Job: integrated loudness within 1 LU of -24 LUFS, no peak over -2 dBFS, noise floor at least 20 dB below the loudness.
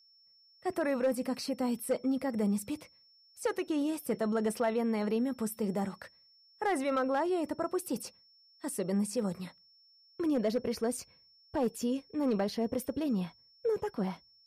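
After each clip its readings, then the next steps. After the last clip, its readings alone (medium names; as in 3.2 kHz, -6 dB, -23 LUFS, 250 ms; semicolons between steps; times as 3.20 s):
clipped samples 0.4%; clipping level -23.0 dBFS; steady tone 5.4 kHz; tone level -61 dBFS; loudness -33.5 LUFS; peak level -23.0 dBFS; loudness target -24.0 LUFS
-> clip repair -23 dBFS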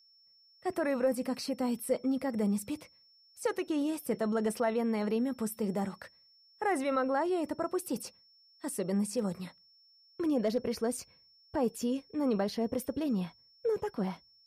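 clipped samples 0.0%; steady tone 5.4 kHz; tone level -61 dBFS
-> band-stop 5.4 kHz, Q 30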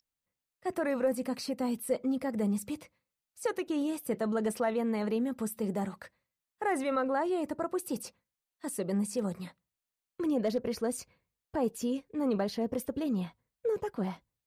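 steady tone not found; loudness -33.0 LUFS; peak level -18.5 dBFS; loudness target -24.0 LUFS
-> trim +9 dB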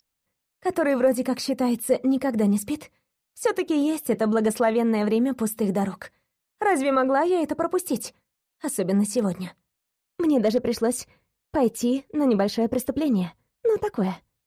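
loudness -24.0 LUFS; peak level -9.5 dBFS; noise floor -81 dBFS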